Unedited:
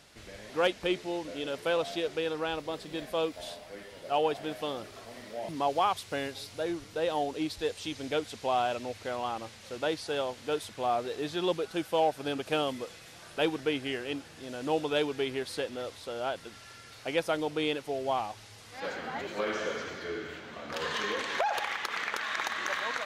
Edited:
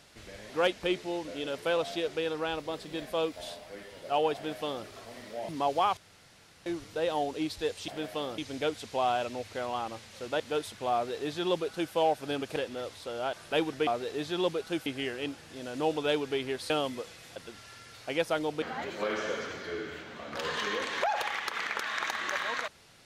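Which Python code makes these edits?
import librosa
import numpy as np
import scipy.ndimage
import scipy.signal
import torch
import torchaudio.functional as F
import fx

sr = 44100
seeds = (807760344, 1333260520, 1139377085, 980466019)

y = fx.edit(x, sr, fx.duplicate(start_s=4.35, length_s=0.5, to_s=7.88),
    fx.room_tone_fill(start_s=5.97, length_s=0.69),
    fx.cut(start_s=9.9, length_s=0.47),
    fx.duplicate(start_s=10.91, length_s=0.99, to_s=13.73),
    fx.swap(start_s=12.53, length_s=0.66, other_s=15.57, other_length_s=0.77),
    fx.cut(start_s=17.6, length_s=1.39), tone=tone)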